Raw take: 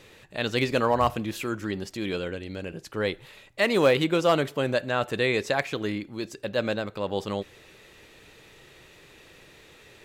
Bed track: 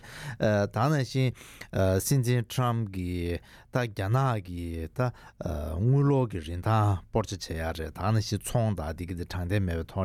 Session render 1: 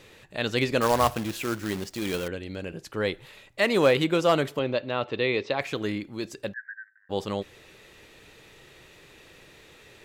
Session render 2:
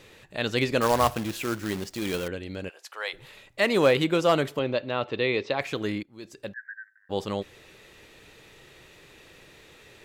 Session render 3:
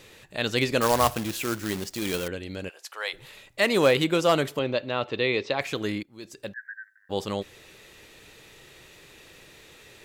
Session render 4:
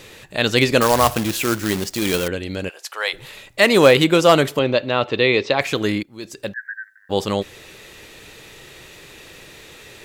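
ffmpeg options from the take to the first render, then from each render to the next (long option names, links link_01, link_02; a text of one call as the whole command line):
ffmpeg -i in.wav -filter_complex "[0:a]asettb=1/sr,asplit=3[link_01][link_02][link_03];[link_01]atrim=end=0.814[link_04];[link_02]atrim=start=0.81:end=2.28,asetpts=PTS-STARTPTS,afade=type=in:duration=0.004:curve=qsin,afade=type=out:start_time=1.466:duration=0.004:curve=qsin,acrusher=bits=2:mode=log:mix=0:aa=0.000001[link_05];[link_03]atrim=start=2.276[link_06];[link_04][link_05]acrossfade=duration=0.004:curve1=hsin:curve2=qsin[link_07];[link_07][link_06]acrossfade=duration=0.004:curve1=qsin:curve2=hsin,asettb=1/sr,asplit=3[link_08][link_09][link_10];[link_08]atrim=end=4.594[link_11];[link_09]atrim=start=4.59:end=5.61,asetpts=PTS-STARTPTS,afade=type=in:duration=0.004:curve=qsin,afade=type=out:start_time=1.016:duration=0.004:curve=qsin,highpass=110,equalizer=frequency=180:width_type=q:width=4:gain=-9,equalizer=frequency=700:width_type=q:width=4:gain=-4,equalizer=frequency=1600:width_type=q:width=4:gain=-9,lowpass=frequency=4300:width=0.5412,lowpass=frequency=4300:width=1.3066[link_12];[link_10]atrim=start=5.606[link_13];[link_11][link_12]acrossfade=duration=0.004:curve1=hsin:curve2=qsin[link_14];[link_14][link_13]acrossfade=duration=0.004:curve1=qsin:curve2=hsin,asplit=3[link_15][link_16][link_17];[link_15]afade=type=out:start_time=6.52:duration=0.02[link_18];[link_16]asuperpass=centerf=1700:order=8:qfactor=4.9,afade=type=in:start_time=6.52:duration=0.02,afade=type=out:start_time=7.09:duration=0.02[link_19];[link_17]afade=type=in:start_time=7.09:duration=0.02[link_20];[link_18][link_19][link_20]amix=inputs=3:normalize=0" out.wav
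ffmpeg -i in.wav -filter_complex "[0:a]asplit=3[link_01][link_02][link_03];[link_01]afade=type=out:start_time=2.68:duration=0.02[link_04];[link_02]highpass=frequency=670:width=0.5412,highpass=frequency=670:width=1.3066,afade=type=in:start_time=2.68:duration=0.02,afade=type=out:start_time=3.13:duration=0.02[link_05];[link_03]afade=type=in:start_time=3.13:duration=0.02[link_06];[link_04][link_05][link_06]amix=inputs=3:normalize=0,asplit=2[link_07][link_08];[link_07]atrim=end=6.03,asetpts=PTS-STARTPTS,afade=type=out:start_time=6.026:duration=0.004:curve=hsin:silence=0.105925[link_09];[link_08]atrim=start=6.03,asetpts=PTS-STARTPTS,afade=type=in:duration=0.71:silence=0.105925[link_10];[link_09][link_10]concat=n=2:v=0:a=1" out.wav
ffmpeg -i in.wav -af "highshelf=frequency=4300:gain=6" out.wav
ffmpeg -i in.wav -af "volume=8.5dB,alimiter=limit=-2dB:level=0:latency=1" out.wav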